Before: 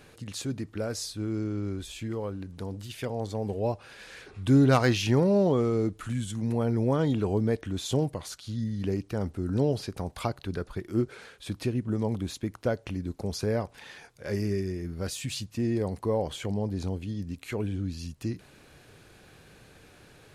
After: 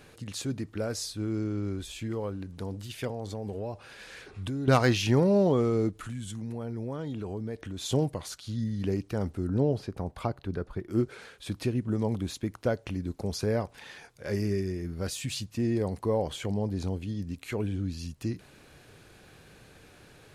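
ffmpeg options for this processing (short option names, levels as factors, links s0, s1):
-filter_complex "[0:a]asettb=1/sr,asplit=3[s0][s1][s2];[s0]atrim=end=3.104[s3];[s1]atrim=start=3.1:end=4.68,asetpts=PTS-STARTPTS,afade=t=in:d=0.004:c=qsin,afade=t=out:st=1.576:d=0.004:c=qsin,acompressor=threshold=0.0282:ratio=6:attack=3.2:release=140:knee=1:detection=peak[s4];[s2]atrim=start=4.676[s5];[s3][s4]acrossfade=d=0.004:c1=hsin:c2=qsin[s6];[s6][s5]acrossfade=d=0.004:c1=qsin:c2=hsin,asplit=3[s7][s8][s9];[s7]afade=t=out:st=5.9:d=0.02[s10];[s8]acompressor=threshold=0.0158:ratio=2.5:attack=3.2:release=140:knee=1:detection=peak,afade=t=in:st=5.9:d=0.02,afade=t=out:st=7.8:d=0.02[s11];[s9]afade=t=in:st=7.8:d=0.02[s12];[s10][s11][s12]amix=inputs=3:normalize=0,asettb=1/sr,asplit=3[s13][s14][s15];[s13]atrim=end=9.474[s16];[s14]atrim=start=9.47:end=10.91,asetpts=PTS-STARTPTS,afade=t=in:d=0.004:c=qsin,afade=t=out:st=1.436:d=0.004:c=qsin,highshelf=f=2300:g=-11[s17];[s15]atrim=start=10.906[s18];[s16][s17]acrossfade=d=0.004:c1=hsin:c2=qsin[s19];[s19][s18]acrossfade=d=0.004:c1=qsin:c2=hsin"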